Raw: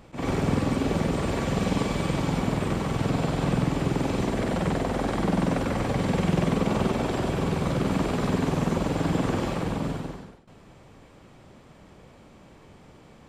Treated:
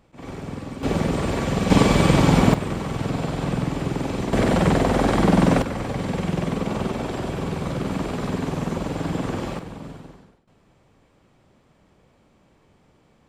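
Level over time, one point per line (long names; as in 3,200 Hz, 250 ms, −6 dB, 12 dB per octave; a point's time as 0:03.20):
−8.5 dB
from 0:00.83 +3 dB
from 0:01.70 +10 dB
from 0:02.54 0 dB
from 0:04.33 +7.5 dB
from 0:05.62 −1 dB
from 0:09.59 −8 dB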